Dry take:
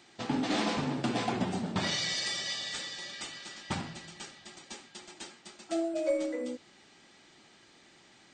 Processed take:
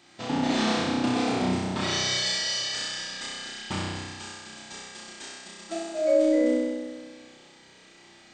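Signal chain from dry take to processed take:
flutter between parallel walls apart 5.5 metres, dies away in 1.5 s

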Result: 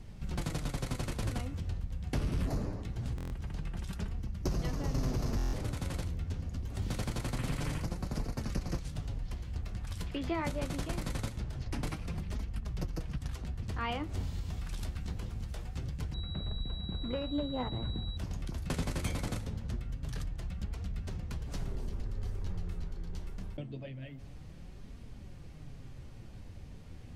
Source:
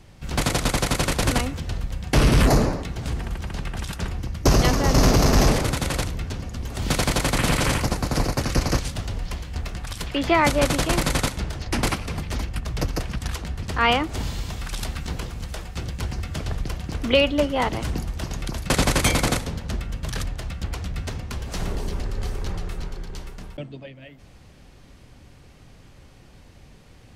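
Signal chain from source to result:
low-shelf EQ 290 Hz +10.5 dB
downward compressor 2.5 to 1, threshold −30 dBFS, peak gain reduction 17.5 dB
flanger 0.24 Hz, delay 4.2 ms, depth 8.2 ms, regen +60%
buffer that repeats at 0:03.16/0:05.37, samples 1,024, times 6
0:16.14–0:18.17: switching amplifier with a slow clock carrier 3,900 Hz
level −3 dB

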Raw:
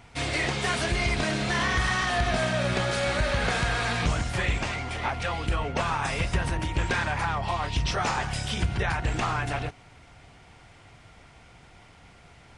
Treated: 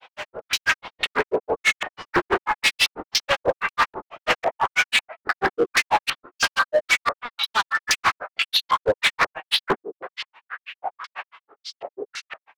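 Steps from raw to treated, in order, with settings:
auto-filter high-pass saw up 0.93 Hz 510–4,000 Hz
downward compressor 5 to 1, threshold −35 dBFS, peak gain reduction 14.5 dB
wave folding −33.5 dBFS
auto-filter low-pass square 1.9 Hz 710–3,200 Hz
dynamic equaliser 1,300 Hz, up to +7 dB, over −52 dBFS, Q 0.8
gain into a clipping stage and back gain 31 dB
granular cloud 89 ms, grains 6.1 per second, spray 37 ms, pitch spread up and down by 12 semitones
automatic gain control gain up to 16.5 dB
level +2.5 dB

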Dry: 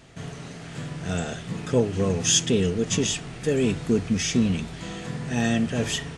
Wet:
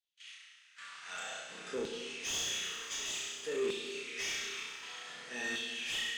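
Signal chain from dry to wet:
noise gate −35 dBFS, range −32 dB
mains-hum notches 60/120 Hz
on a send: flutter between parallel walls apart 5.6 metres, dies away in 0.8 s
on the sum: auto-filter high-pass saw down 0.54 Hz 350–3,800 Hz
guitar amp tone stack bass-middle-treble 6-0-2
mid-hump overdrive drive 23 dB, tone 2,400 Hz, clips at −18 dBFS
dense smooth reverb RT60 2.7 s, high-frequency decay 1×, DRR 5 dB
in parallel at −8 dB: gain into a clipping stage and back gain 31 dB
on the sum: level −8 dB

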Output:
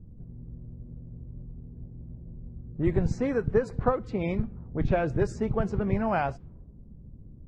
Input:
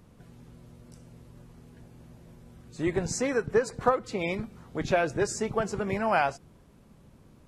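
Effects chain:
low-pass that shuts in the quiet parts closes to 370 Hz, open at −24 dBFS
RIAA equalisation playback
level −3.5 dB

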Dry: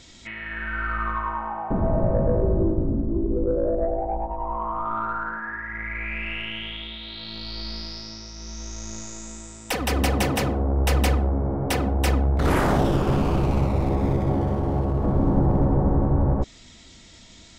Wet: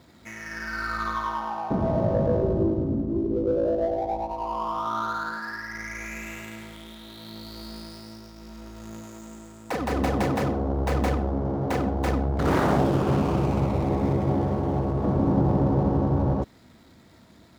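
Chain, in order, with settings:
running median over 15 samples
high-pass filter 92 Hz 12 dB per octave

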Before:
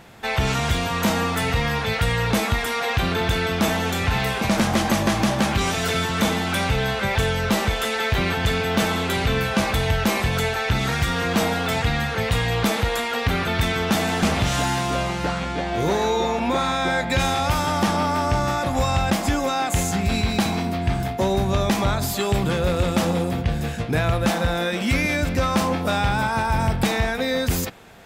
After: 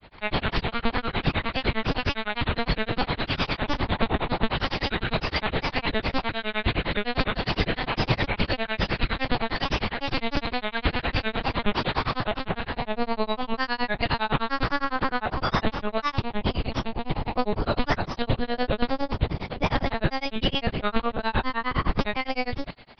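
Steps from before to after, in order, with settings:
one-pitch LPC vocoder at 8 kHz 200 Hz
speed change +22%
delay with a high-pass on its return 135 ms, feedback 59%, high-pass 2,400 Hz, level −15 dB
granular cloud 106 ms, grains 9.8 per second, spray 14 ms, pitch spread up and down by 3 semitones

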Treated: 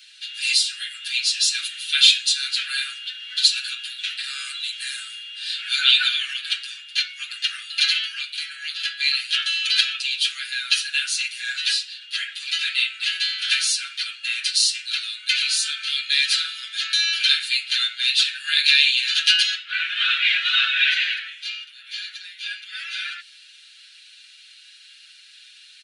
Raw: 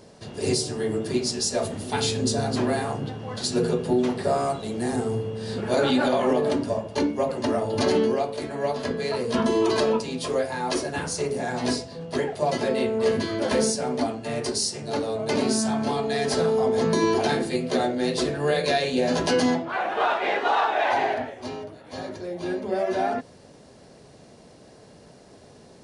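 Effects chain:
Butterworth high-pass 1,400 Hz 96 dB per octave
flat-topped bell 3,200 Hz +12.5 dB 1 octave
comb filter 6.7 ms, depth 92%
level +2 dB

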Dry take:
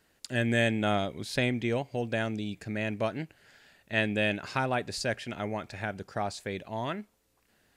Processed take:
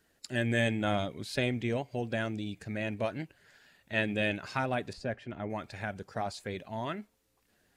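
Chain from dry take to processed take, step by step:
spectral magnitudes quantised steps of 15 dB
0:04.93–0:05.50: low-pass filter 1,100 Hz 6 dB per octave
level −2 dB

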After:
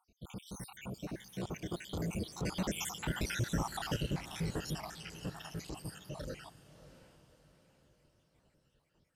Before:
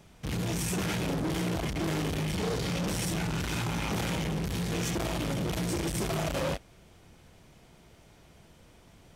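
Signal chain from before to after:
time-frequency cells dropped at random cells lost 71%
source passing by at 0:03.38, 27 m/s, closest 22 metres
feedback delay with all-pass diffusion 643 ms, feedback 43%, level −14.5 dB
level +1.5 dB

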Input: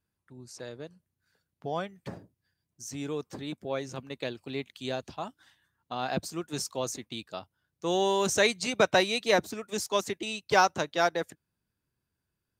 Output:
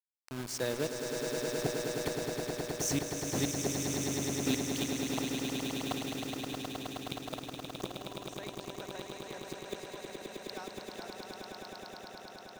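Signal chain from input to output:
bit reduction 8 bits
gate with flip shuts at −28 dBFS, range −33 dB
on a send: echo that builds up and dies away 105 ms, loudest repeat 8, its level −6.5 dB
on the sum: level +7.5 dB

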